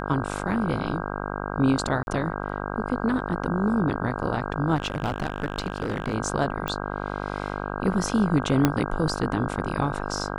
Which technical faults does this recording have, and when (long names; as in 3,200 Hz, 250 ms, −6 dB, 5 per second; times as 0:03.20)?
mains buzz 50 Hz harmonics 32 −31 dBFS
0:02.03–0:02.07: drop-out 41 ms
0:04.75–0:06.15: clipping −20.5 dBFS
0:06.68: click
0:08.65: click −5 dBFS